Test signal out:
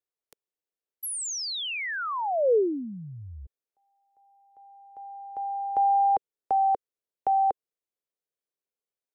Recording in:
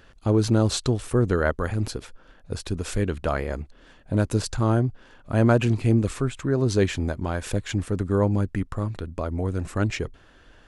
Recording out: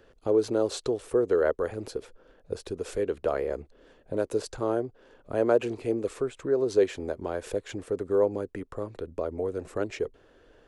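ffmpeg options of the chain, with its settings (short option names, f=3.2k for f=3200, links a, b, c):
-filter_complex "[0:a]equalizer=f=450:t=o:w=1.1:g=14,acrossover=split=320|760[a][b][c];[a]acompressor=threshold=-31dB:ratio=6[d];[d][b][c]amix=inputs=3:normalize=0,volume=-9dB"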